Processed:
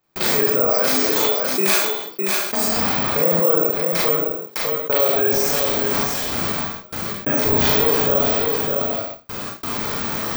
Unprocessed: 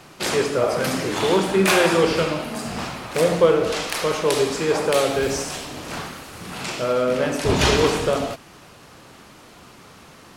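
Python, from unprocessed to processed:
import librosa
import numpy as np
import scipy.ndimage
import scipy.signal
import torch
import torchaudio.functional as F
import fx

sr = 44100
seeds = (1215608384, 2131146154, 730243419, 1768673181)

y = scipy.signal.sosfilt(scipy.signal.butter(2, 11000.0, 'lowpass', fs=sr, output='sos'), x)
y = fx.notch(y, sr, hz=2800.0, q=11.0)
y = fx.spec_gate(y, sr, threshold_db=-30, keep='strong')
y = fx.bass_treble(y, sr, bass_db=-11, treble_db=8, at=(0.65, 2.77))
y = fx.step_gate(y, sr, bpm=95, pattern='.xxxxxxx..x....', floor_db=-60.0, edge_ms=4.5)
y = y + 10.0 ** (-12.0 / 20.0) * np.pad(y, (int(608 * sr / 1000.0), 0))[:len(y)]
y = fx.rev_schroeder(y, sr, rt60_s=0.3, comb_ms=27, drr_db=-4.0)
y = (np.kron(scipy.signal.resample_poly(y, 1, 2), np.eye(2)[0]) * 2)[:len(y)]
y = fx.env_flatten(y, sr, amount_pct=70)
y = y * 10.0 ** (-10.0 / 20.0)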